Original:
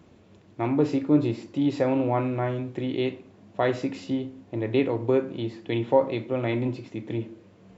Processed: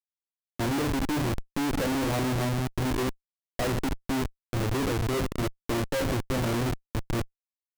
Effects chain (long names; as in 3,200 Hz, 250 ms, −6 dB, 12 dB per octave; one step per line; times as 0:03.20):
hearing-aid frequency compression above 2,100 Hz 1.5 to 1
comparator with hysteresis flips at −29.5 dBFS